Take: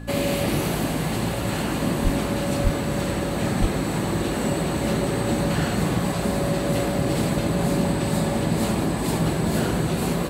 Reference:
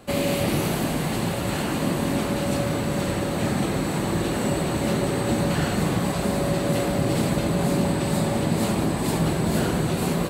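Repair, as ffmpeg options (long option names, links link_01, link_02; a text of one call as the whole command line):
ffmpeg -i in.wav -filter_complex "[0:a]bandreject=frequency=56.4:width_type=h:width=4,bandreject=frequency=112.8:width_type=h:width=4,bandreject=frequency=169.2:width_type=h:width=4,bandreject=frequency=225.6:width_type=h:width=4,bandreject=frequency=282:width_type=h:width=4,bandreject=frequency=1700:width=30,asplit=3[link_01][link_02][link_03];[link_01]afade=type=out:start_time=2.03:duration=0.02[link_04];[link_02]highpass=frequency=140:width=0.5412,highpass=frequency=140:width=1.3066,afade=type=in:start_time=2.03:duration=0.02,afade=type=out:start_time=2.15:duration=0.02[link_05];[link_03]afade=type=in:start_time=2.15:duration=0.02[link_06];[link_04][link_05][link_06]amix=inputs=3:normalize=0,asplit=3[link_07][link_08][link_09];[link_07]afade=type=out:start_time=2.63:duration=0.02[link_10];[link_08]highpass=frequency=140:width=0.5412,highpass=frequency=140:width=1.3066,afade=type=in:start_time=2.63:duration=0.02,afade=type=out:start_time=2.75:duration=0.02[link_11];[link_09]afade=type=in:start_time=2.75:duration=0.02[link_12];[link_10][link_11][link_12]amix=inputs=3:normalize=0,asplit=3[link_13][link_14][link_15];[link_13]afade=type=out:start_time=3.6:duration=0.02[link_16];[link_14]highpass=frequency=140:width=0.5412,highpass=frequency=140:width=1.3066,afade=type=in:start_time=3.6:duration=0.02,afade=type=out:start_time=3.72:duration=0.02[link_17];[link_15]afade=type=in:start_time=3.72:duration=0.02[link_18];[link_16][link_17][link_18]amix=inputs=3:normalize=0" out.wav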